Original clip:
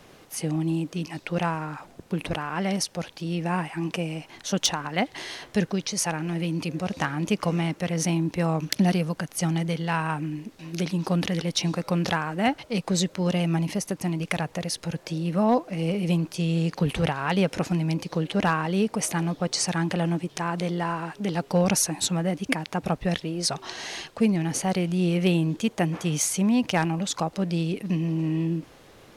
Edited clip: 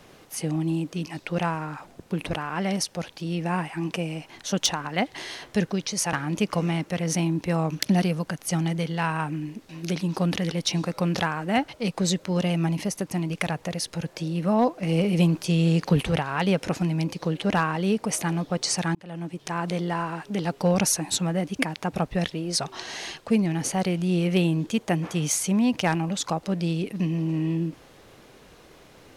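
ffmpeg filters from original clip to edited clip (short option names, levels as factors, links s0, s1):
-filter_complex "[0:a]asplit=5[s0][s1][s2][s3][s4];[s0]atrim=end=6.132[s5];[s1]atrim=start=7.028:end=15.732[s6];[s2]atrim=start=15.728:end=16.922,asetpts=PTS-STARTPTS,volume=1.5[s7];[s3]atrim=start=16.918:end=19.85,asetpts=PTS-STARTPTS,afade=t=out:st=2.928:d=0.004:c=hsin[s8];[s4]atrim=start=19.85,asetpts=PTS-STARTPTS,afade=t=in:d=0.66[s9];[s5][s6]acrossfade=d=0.004:c1=hsin:c2=hsin[s10];[s10][s7]acrossfade=d=0.004:c1=hsin:c2=hsin[s11];[s8][s9]concat=n=2:v=0:a=1[s12];[s11][s12]acrossfade=d=0.004:c1=hsin:c2=hsin"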